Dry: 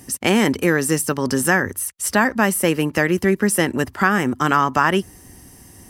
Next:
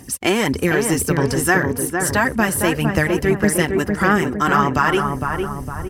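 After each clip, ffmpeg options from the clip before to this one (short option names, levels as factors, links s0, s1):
-filter_complex "[0:a]aphaser=in_gain=1:out_gain=1:delay=3:decay=0.47:speed=1.7:type=sinusoidal,asplit=2[s0][s1];[s1]adelay=458,lowpass=f=1300:p=1,volume=0.668,asplit=2[s2][s3];[s3]adelay=458,lowpass=f=1300:p=1,volume=0.54,asplit=2[s4][s5];[s5]adelay=458,lowpass=f=1300:p=1,volume=0.54,asplit=2[s6][s7];[s7]adelay=458,lowpass=f=1300:p=1,volume=0.54,asplit=2[s8][s9];[s9]adelay=458,lowpass=f=1300:p=1,volume=0.54,asplit=2[s10][s11];[s11]adelay=458,lowpass=f=1300:p=1,volume=0.54,asplit=2[s12][s13];[s13]adelay=458,lowpass=f=1300:p=1,volume=0.54[s14];[s0][s2][s4][s6][s8][s10][s12][s14]amix=inputs=8:normalize=0,asubboost=boost=11:cutoff=100,volume=0.891"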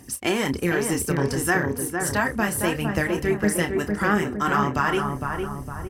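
-filter_complex "[0:a]asplit=2[s0][s1];[s1]adelay=29,volume=0.355[s2];[s0][s2]amix=inputs=2:normalize=0,volume=0.501"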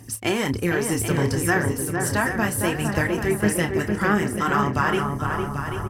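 -af "equalizer=f=110:t=o:w=0.24:g=14.5,aecho=1:1:788:0.355"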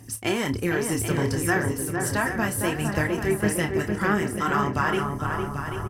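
-filter_complex "[0:a]asplit=2[s0][s1];[s1]adelay=26,volume=0.224[s2];[s0][s2]amix=inputs=2:normalize=0,volume=0.75"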